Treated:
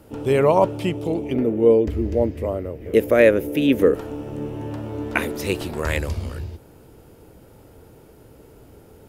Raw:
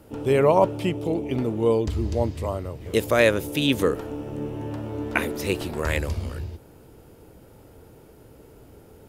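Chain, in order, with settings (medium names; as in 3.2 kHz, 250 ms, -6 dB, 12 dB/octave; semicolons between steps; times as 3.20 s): 1.33–3.94 s: graphic EQ 125/250/500/1000/2000/4000/8000 Hz -5/+4/+6/-8/+4/-10/-10 dB; trim +1.5 dB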